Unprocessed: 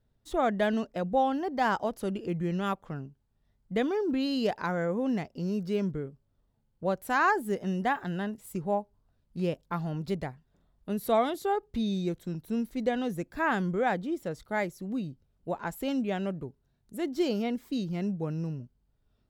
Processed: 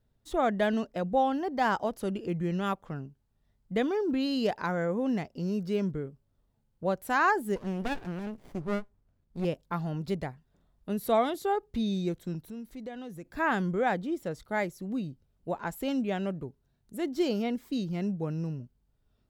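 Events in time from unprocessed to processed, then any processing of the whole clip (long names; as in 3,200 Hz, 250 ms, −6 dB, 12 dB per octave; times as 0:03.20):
0:07.56–0:09.45: windowed peak hold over 33 samples
0:12.47–0:13.25: downward compressor 2 to 1, threshold −46 dBFS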